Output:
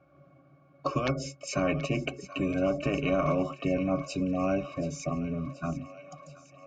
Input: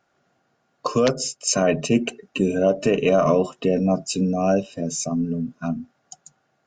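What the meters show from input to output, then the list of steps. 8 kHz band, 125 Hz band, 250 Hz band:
-16.5 dB, -5.5 dB, -7.5 dB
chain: octave resonator C#, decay 0.11 s; thin delay 0.73 s, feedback 65%, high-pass 1800 Hz, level -15 dB; spectral compressor 2:1; gain +1.5 dB

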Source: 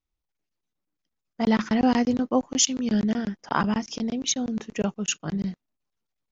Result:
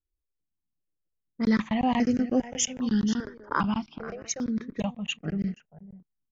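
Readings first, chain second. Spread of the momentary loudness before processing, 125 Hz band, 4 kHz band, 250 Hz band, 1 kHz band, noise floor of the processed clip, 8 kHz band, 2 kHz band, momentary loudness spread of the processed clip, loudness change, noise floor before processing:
8 LU, -1.5 dB, -6.0 dB, -2.5 dB, -2.5 dB, -83 dBFS, n/a, -2.0 dB, 9 LU, -3.0 dB, -84 dBFS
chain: echo 0.485 s -14 dB; low-pass opened by the level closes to 420 Hz, open at -19.5 dBFS; step phaser 2.5 Hz 740–3600 Hz

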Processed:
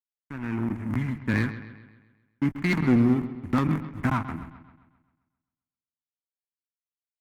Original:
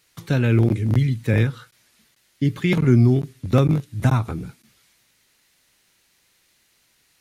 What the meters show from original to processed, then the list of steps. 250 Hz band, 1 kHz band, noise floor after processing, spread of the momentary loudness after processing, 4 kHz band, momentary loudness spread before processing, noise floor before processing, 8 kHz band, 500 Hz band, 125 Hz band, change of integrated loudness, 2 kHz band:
-3.0 dB, -1.0 dB, under -85 dBFS, 18 LU, -7.5 dB, 9 LU, -64 dBFS, n/a, -9.5 dB, -11.0 dB, -6.5 dB, -1.5 dB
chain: opening faded in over 1.16 s; backlash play -24.5 dBFS; graphic EQ 125/250/500/1000/2000/4000 Hz -7/+8/-11/+8/+10/-10 dB; one-sided clip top -14.5 dBFS; analogue delay 0.132 s, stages 4096, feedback 50%, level -13 dB; gain -4.5 dB

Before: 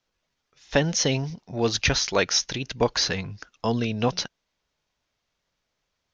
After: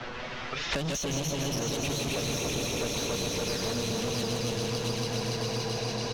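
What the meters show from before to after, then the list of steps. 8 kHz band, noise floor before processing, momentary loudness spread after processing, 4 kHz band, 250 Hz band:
n/a, -79 dBFS, 2 LU, -4.0 dB, -3.5 dB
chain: regenerating reverse delay 0.142 s, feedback 83%, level -5 dB; in parallel at -2 dB: compressor 6:1, threshold -33 dBFS, peak gain reduction 18 dB; on the sum: power-law curve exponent 0.7; envelope flanger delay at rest 8.6 ms, full sweep at -15 dBFS; soft clip -23 dBFS, distortion -8 dB; echo 0.663 s -4.5 dB; low-pass opened by the level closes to 2200 Hz, open at -25.5 dBFS; split-band echo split 1300 Hz, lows 0.406 s, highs 0.16 s, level -4.5 dB; three-band squash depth 100%; gain -8.5 dB

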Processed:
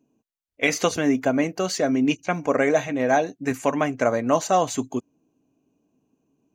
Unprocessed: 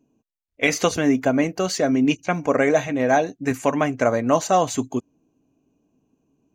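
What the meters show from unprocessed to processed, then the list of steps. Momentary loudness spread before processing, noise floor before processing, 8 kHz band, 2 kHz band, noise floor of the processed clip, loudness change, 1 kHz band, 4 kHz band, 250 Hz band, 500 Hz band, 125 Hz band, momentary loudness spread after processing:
5 LU, -76 dBFS, -1.5 dB, -1.5 dB, -83 dBFS, -2.0 dB, -1.5 dB, -1.5 dB, -2.0 dB, -1.5 dB, -3.5 dB, 5 LU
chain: low shelf 67 Hz -11 dB; gain -1.5 dB

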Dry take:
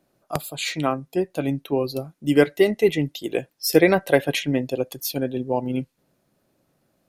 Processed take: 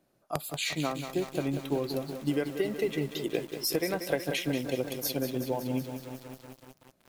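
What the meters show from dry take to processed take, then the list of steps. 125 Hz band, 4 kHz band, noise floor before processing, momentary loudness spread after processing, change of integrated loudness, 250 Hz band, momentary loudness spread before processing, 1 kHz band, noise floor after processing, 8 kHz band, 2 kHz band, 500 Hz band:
-7.0 dB, -5.5 dB, -70 dBFS, 9 LU, -9.0 dB, -8.5 dB, 11 LU, -9.0 dB, -70 dBFS, -4.5 dB, -10.0 dB, -10.5 dB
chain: compressor 8:1, threshold -22 dBFS, peak gain reduction 13 dB; lo-fi delay 0.186 s, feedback 80%, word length 7-bit, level -9 dB; gain -4 dB

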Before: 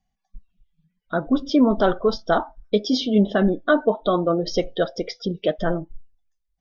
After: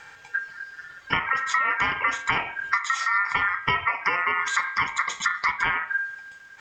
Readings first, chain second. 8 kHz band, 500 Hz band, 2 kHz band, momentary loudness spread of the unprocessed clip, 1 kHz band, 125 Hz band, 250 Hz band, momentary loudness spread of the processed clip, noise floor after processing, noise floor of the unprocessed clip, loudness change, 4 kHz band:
n/a, -21.0 dB, +10.0 dB, 8 LU, +3.5 dB, -12.5 dB, -24.0 dB, 11 LU, -47 dBFS, -77 dBFS, -2.5 dB, -2.0 dB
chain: per-bin compression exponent 0.6; dynamic EQ 3100 Hz, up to -5 dB, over -40 dBFS, Q 0.92; compressor 6:1, threshold -27 dBFS, peak gain reduction 15 dB; ring modulator 1600 Hz; de-hum 103.1 Hz, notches 40; gain +8.5 dB

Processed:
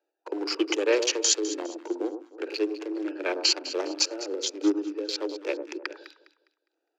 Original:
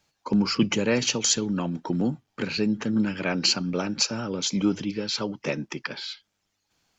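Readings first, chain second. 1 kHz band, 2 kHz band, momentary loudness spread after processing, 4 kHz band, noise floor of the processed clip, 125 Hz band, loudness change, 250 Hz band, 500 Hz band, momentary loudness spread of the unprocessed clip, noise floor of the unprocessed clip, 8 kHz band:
-3.5 dB, -2.5 dB, 12 LU, -1.0 dB, -82 dBFS, under -40 dB, -2.0 dB, -5.5 dB, +2.0 dB, 10 LU, -77 dBFS, n/a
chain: Wiener smoothing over 41 samples; steep high-pass 310 Hz 96 dB/oct; on a send: echo with dull and thin repeats by turns 0.102 s, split 1100 Hz, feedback 54%, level -9 dB; on the sum: harmonic-percussive split harmonic +5 dB

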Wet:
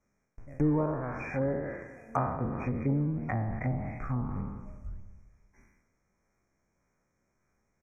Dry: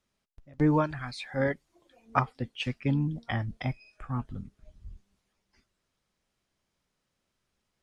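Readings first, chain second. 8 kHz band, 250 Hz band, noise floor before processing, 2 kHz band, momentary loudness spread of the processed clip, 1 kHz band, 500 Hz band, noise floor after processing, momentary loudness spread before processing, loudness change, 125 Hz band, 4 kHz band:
n/a, -0.5 dB, -81 dBFS, -5.0 dB, 16 LU, -2.5 dB, -0.5 dB, -77 dBFS, 15 LU, -1.5 dB, 0.0 dB, under -30 dB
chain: spectral trails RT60 1.02 s; LPF 6800 Hz 24 dB/oct; in parallel at -8 dB: decimation with a swept rate 19×, swing 160% 1.7 Hz; on the sum: compressor 1.5:1, threshold -32 dBFS, peak gain reduction 6.5 dB; brick-wall FIR band-stop 2500–5300 Hz; on a send: feedback echo 0.177 s, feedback 56%, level -20 dB; on the sum: treble ducked by the level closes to 780 Hz, closed at -26.5 dBFS

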